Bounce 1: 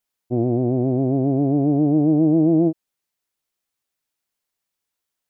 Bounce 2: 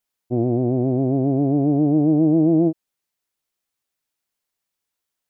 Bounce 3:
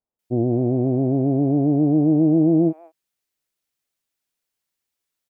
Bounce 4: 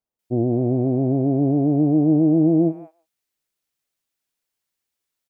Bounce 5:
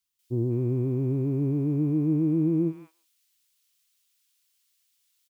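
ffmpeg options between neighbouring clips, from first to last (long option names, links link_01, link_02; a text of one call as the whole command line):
ffmpeg -i in.wav -af anull out.wav
ffmpeg -i in.wav -filter_complex "[0:a]acrossover=split=970[link_01][link_02];[link_02]adelay=190[link_03];[link_01][link_03]amix=inputs=2:normalize=0" out.wav
ffmpeg -i in.wav -af "aecho=1:1:145:0.0944" out.wav
ffmpeg -i in.wav -af "firequalizer=gain_entry='entry(110,0);entry(250,-8);entry(390,-4);entry(680,-25);entry(1000,2);entry(1700,4);entry(3000,13)':delay=0.05:min_phase=1,volume=-2dB" out.wav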